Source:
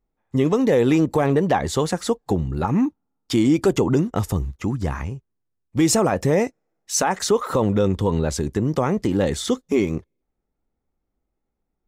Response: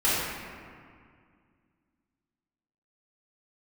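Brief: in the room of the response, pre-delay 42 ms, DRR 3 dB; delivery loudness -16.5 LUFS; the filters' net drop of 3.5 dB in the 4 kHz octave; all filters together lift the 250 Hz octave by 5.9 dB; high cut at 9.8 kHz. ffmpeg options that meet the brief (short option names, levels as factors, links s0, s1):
-filter_complex "[0:a]lowpass=9800,equalizer=f=250:t=o:g=7.5,equalizer=f=4000:t=o:g=-4.5,asplit=2[s0][s1];[1:a]atrim=start_sample=2205,adelay=42[s2];[s1][s2]afir=irnorm=-1:irlink=0,volume=0.126[s3];[s0][s3]amix=inputs=2:normalize=0,volume=0.891"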